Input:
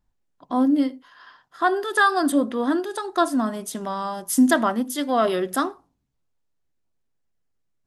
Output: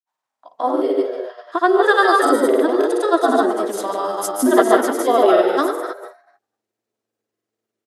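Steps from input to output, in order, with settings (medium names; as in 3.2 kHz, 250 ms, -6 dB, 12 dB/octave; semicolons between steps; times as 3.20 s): frequency-shifting echo 131 ms, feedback 39%, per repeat +110 Hz, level -8.5 dB; reverberation RT60 0.40 s, pre-delay 75 ms, DRR 4.5 dB; granulator, pitch spread up and down by 0 st; high-pass sweep 850 Hz -> 390 Hz, 0.26–1.03 s; trim +3 dB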